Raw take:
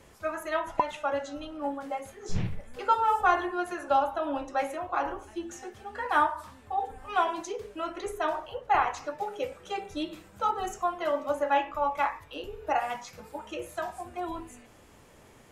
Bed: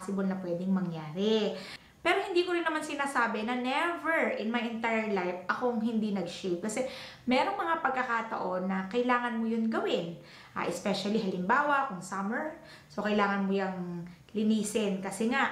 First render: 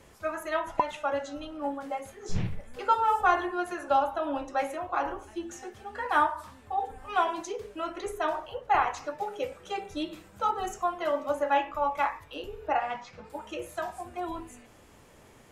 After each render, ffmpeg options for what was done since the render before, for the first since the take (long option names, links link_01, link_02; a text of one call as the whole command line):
ffmpeg -i in.wav -filter_complex "[0:a]asettb=1/sr,asplit=3[link_01][link_02][link_03];[link_01]atrim=end=12.674[link_04];[link_02]atrim=start=12.67:end=13.3,asetpts=PTS-STARTPTS,afade=type=in:duration=0.004:curve=qsin,afade=type=out:start_time=0.626:duration=0.004:curve=qsin,lowpass=3800[link_05];[link_03]atrim=start=13.296[link_06];[link_04][link_05]acrossfade=duration=0.004:curve1=hsin:curve2=qsin[link_07];[link_07][link_06]acrossfade=duration=0.004:curve1=qsin:curve2=hsin" out.wav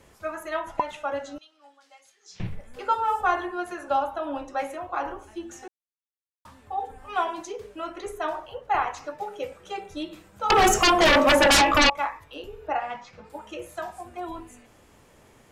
ffmpeg -i in.wav -filter_complex "[0:a]asettb=1/sr,asplit=3[link_01][link_02][link_03];[link_01]atrim=end=1.384[link_04];[link_02]atrim=start=1.38:end=2.4,asetpts=PTS-STARTPTS,afade=type=in:duration=0.004:curve=qsin,afade=type=out:start_time=1.016:duration=0.004:curve=qsin,bandpass=frequency=4900:width_type=q:width=1.7[link_05];[link_03]atrim=start=2.396[link_06];[link_04][link_05]acrossfade=duration=0.004:curve1=hsin:curve2=qsin[link_07];[link_07][link_06]acrossfade=duration=0.004:curve1=qsin:curve2=hsin,asettb=1/sr,asplit=3[link_08][link_09][link_10];[link_08]atrim=end=10.504[link_11];[link_09]atrim=start=10.5:end=11.9,asetpts=PTS-STARTPTS,afade=type=in:duration=0.004:curve=qsin,afade=type=out:start_time=1.396:duration=0.004:curve=qsin,aeval=exprs='0.211*sin(PI/2*7.08*val(0)/0.211)':channel_layout=same[link_12];[link_10]atrim=start=11.896[link_13];[link_11][link_12]acrossfade=duration=0.004:curve1=hsin:curve2=qsin[link_14];[link_14][link_13]acrossfade=duration=0.004:curve1=qsin:curve2=hsin,asplit=3[link_15][link_16][link_17];[link_15]atrim=end=5.68,asetpts=PTS-STARTPTS,afade=type=out:start_time=5.676:duration=0.004:curve=hsin[link_18];[link_16]atrim=start=5.68:end=6.45,asetpts=PTS-STARTPTS,volume=0[link_19];[link_17]atrim=start=6.45,asetpts=PTS-STARTPTS,afade=type=in:duration=0.004:curve=hsin[link_20];[link_18][link_19][link_20]concat=n=3:v=0:a=1" out.wav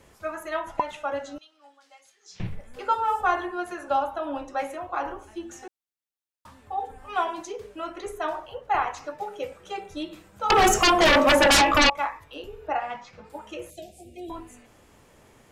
ffmpeg -i in.wav -filter_complex "[0:a]asettb=1/sr,asplit=3[link_01][link_02][link_03];[link_01]atrim=end=13.704[link_04];[link_02]atrim=start=13.7:end=14.3,asetpts=PTS-STARTPTS,afade=type=in:duration=0.004:curve=qsin,afade=type=out:start_time=0.596:duration=0.004:curve=qsin,asuperstop=centerf=1200:order=8:qfactor=0.65[link_05];[link_03]atrim=start=14.296[link_06];[link_04][link_05]acrossfade=duration=0.004:curve1=hsin:curve2=qsin[link_07];[link_07][link_06]acrossfade=duration=0.004:curve1=qsin:curve2=hsin" out.wav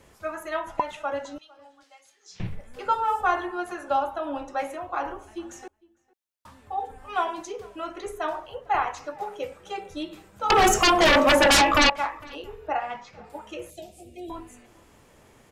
ffmpeg -i in.wav -filter_complex "[0:a]asplit=2[link_01][link_02];[link_02]adelay=454.8,volume=-24dB,highshelf=frequency=4000:gain=-10.2[link_03];[link_01][link_03]amix=inputs=2:normalize=0" out.wav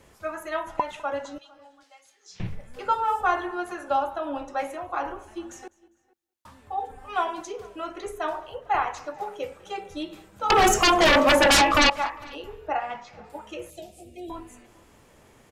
ffmpeg -i in.wav -af "aecho=1:1:201|402:0.0668|0.0214" out.wav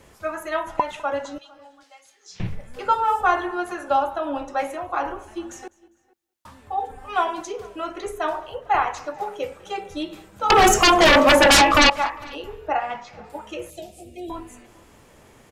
ffmpeg -i in.wav -af "volume=4dB" out.wav